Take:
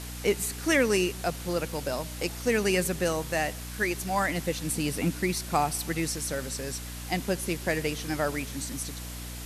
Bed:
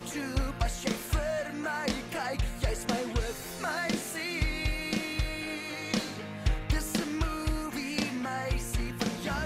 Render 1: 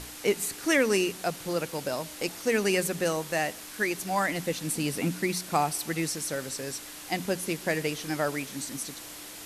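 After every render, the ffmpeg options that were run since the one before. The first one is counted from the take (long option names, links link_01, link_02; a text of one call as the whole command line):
ffmpeg -i in.wav -af "bandreject=frequency=60:width_type=h:width=6,bandreject=frequency=120:width_type=h:width=6,bandreject=frequency=180:width_type=h:width=6,bandreject=frequency=240:width_type=h:width=6" out.wav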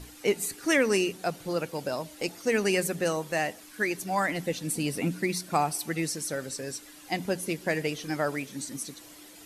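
ffmpeg -i in.wav -af "afftdn=noise_reduction=10:noise_floor=-43" out.wav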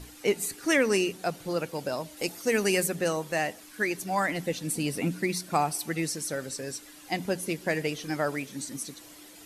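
ffmpeg -i in.wav -filter_complex "[0:a]asettb=1/sr,asplit=3[link_01][link_02][link_03];[link_01]atrim=end=2.174[link_04];[link_02]atrim=start=2.17:end=2.86,asetpts=PTS-STARTPTS,afade=type=in:duration=0.004:curve=qsin,afade=type=out:start_time=0.686:duration=0.004:curve=qsin,highshelf=frequency=8800:gain=9.5[link_05];[link_03]atrim=start=2.856[link_06];[link_04][link_05]acrossfade=duration=0.004:curve1=hsin:curve2=qsin[link_07];[link_07][link_06]acrossfade=duration=0.004:curve1=qsin:curve2=hsin" out.wav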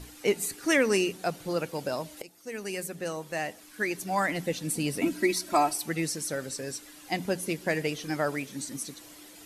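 ffmpeg -i in.wav -filter_complex "[0:a]asettb=1/sr,asplit=3[link_01][link_02][link_03];[link_01]atrim=end=5.014[link_04];[link_02]atrim=start=5.01:end=5.74,asetpts=PTS-STARTPTS,afade=type=in:duration=0.004:curve=qsin,afade=type=out:start_time=0.726:duration=0.004:curve=qsin,aecho=1:1:3.1:0.91,atrim=end_sample=32193[link_05];[link_03]atrim=start=5.736[link_06];[link_04][link_05]acrossfade=duration=0.004:curve1=hsin:curve2=qsin[link_07];[link_07][link_06]acrossfade=duration=0.004:curve1=qsin:curve2=hsin,asplit=2[link_08][link_09];[link_08]atrim=end=2.22,asetpts=PTS-STARTPTS,afade=type=out:start_time=2.216:duration=0.004:curve=hsin:silence=0.1[link_10];[link_09]atrim=start=2.22,asetpts=PTS-STARTPTS,afade=type=in:duration=1.98:silence=0.1[link_11];[link_10][link_11]concat=n=2:v=0:a=1" out.wav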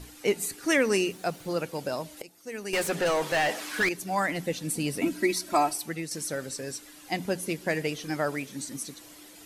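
ffmpeg -i in.wav -filter_complex "[0:a]asettb=1/sr,asplit=3[link_01][link_02][link_03];[link_01]atrim=end=0.814[link_04];[link_02]atrim=start=0.81:end=1.58,asetpts=PTS-STARTPTS,afade=type=in:duration=0.004:curve=qsin,afade=type=out:start_time=0.766:duration=0.004:curve=qsin,aeval=exprs='val(0)*gte(abs(val(0)),0.00237)':channel_layout=same[link_05];[link_03]atrim=start=1.576[link_06];[link_04][link_05]acrossfade=duration=0.004:curve1=hsin:curve2=qsin[link_07];[link_07][link_06]acrossfade=duration=0.004:curve1=qsin:curve2=hsin,asettb=1/sr,asplit=3[link_08][link_09][link_10];[link_08]atrim=end=2.734[link_11];[link_09]atrim=start=2.73:end=3.89,asetpts=PTS-STARTPTS,afade=type=in:duration=0.004:curve=qsin,afade=type=out:start_time=1.156:duration=0.004:curve=qsin,asplit=2[link_12][link_13];[link_13]highpass=frequency=720:poles=1,volume=27dB,asoftclip=type=tanh:threshold=-17dB[link_14];[link_12][link_14]amix=inputs=2:normalize=0,lowpass=frequency=3200:poles=1,volume=-6dB[link_15];[link_10]atrim=start=3.886[link_16];[link_11][link_15]acrossfade=duration=0.004:curve1=hsin:curve2=qsin[link_17];[link_17][link_16]acrossfade=duration=0.004:curve1=qsin:curve2=hsin,asplit=2[link_18][link_19];[link_18]atrim=end=6.11,asetpts=PTS-STARTPTS,afade=type=out:start_time=5.58:duration=0.53:curve=qsin:silence=0.398107[link_20];[link_19]atrim=start=6.11,asetpts=PTS-STARTPTS,afade=type=in:duration=0.004:curve=hsin:silence=0.398107[link_21];[link_20][link_21]concat=n=2:v=0:a=1" out.wav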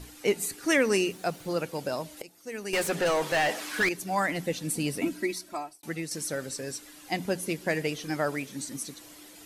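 ffmpeg -i in.wav -filter_complex "[0:a]asplit=2[link_01][link_02];[link_01]atrim=end=5.83,asetpts=PTS-STARTPTS,afade=type=out:start_time=4.87:duration=0.96[link_03];[link_02]atrim=start=5.83,asetpts=PTS-STARTPTS,afade=type=in:duration=0.004:curve=hsin[link_04];[link_03][link_04]concat=n=2:v=0:a=1" out.wav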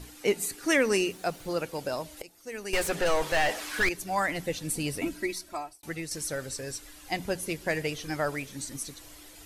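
ffmpeg -i in.wav -af "asubboost=boost=9:cutoff=66" out.wav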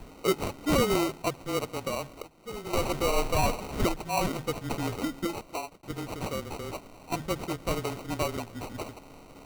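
ffmpeg -i in.wav -af "afreqshift=-24,acrusher=samples=26:mix=1:aa=0.000001" out.wav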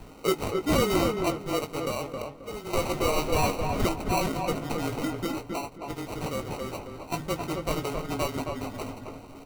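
ffmpeg -i in.wav -filter_complex "[0:a]asplit=2[link_01][link_02];[link_02]adelay=19,volume=-8.5dB[link_03];[link_01][link_03]amix=inputs=2:normalize=0,asplit=2[link_04][link_05];[link_05]adelay=268,lowpass=frequency=1700:poles=1,volume=-3.5dB,asplit=2[link_06][link_07];[link_07]adelay=268,lowpass=frequency=1700:poles=1,volume=0.29,asplit=2[link_08][link_09];[link_09]adelay=268,lowpass=frequency=1700:poles=1,volume=0.29,asplit=2[link_10][link_11];[link_11]adelay=268,lowpass=frequency=1700:poles=1,volume=0.29[link_12];[link_04][link_06][link_08][link_10][link_12]amix=inputs=5:normalize=0" out.wav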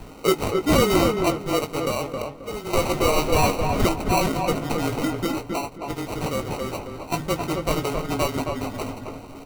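ffmpeg -i in.wav -af "volume=5.5dB" out.wav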